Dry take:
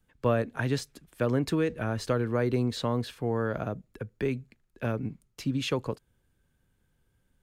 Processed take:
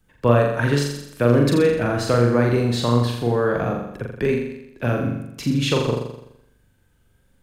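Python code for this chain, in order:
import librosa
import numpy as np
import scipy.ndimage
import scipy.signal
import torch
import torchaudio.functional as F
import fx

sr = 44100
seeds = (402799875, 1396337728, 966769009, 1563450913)

y = fx.room_flutter(x, sr, wall_m=7.2, rt60_s=0.81)
y = y * librosa.db_to_amplitude(7.0)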